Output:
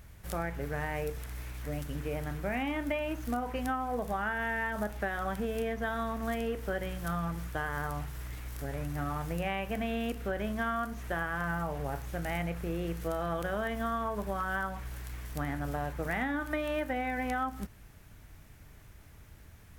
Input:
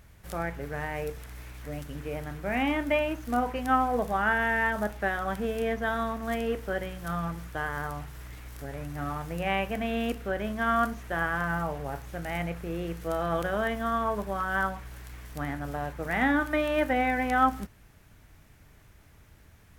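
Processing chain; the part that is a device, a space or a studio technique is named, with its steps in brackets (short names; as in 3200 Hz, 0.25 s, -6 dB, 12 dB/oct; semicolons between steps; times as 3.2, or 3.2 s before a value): ASMR close-microphone chain (low shelf 130 Hz +3.5 dB; compressor 10:1, threshold -29 dBFS, peak gain reduction 12.5 dB; high shelf 8400 Hz +3.5 dB)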